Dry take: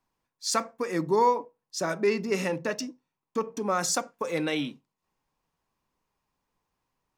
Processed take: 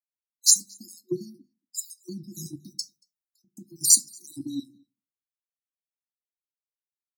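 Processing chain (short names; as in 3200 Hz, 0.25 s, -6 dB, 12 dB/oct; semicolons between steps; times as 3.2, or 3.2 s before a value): random spectral dropouts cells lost 56%; RIAA curve recording; FFT band-reject 390–3800 Hz; bell 5100 Hz -5.5 dB 1.1 oct; outdoor echo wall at 40 m, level -22 dB; frequency shift -26 Hz; on a send at -12 dB: reverb RT60 0.30 s, pre-delay 7 ms; on the sum: three-band expander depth 100%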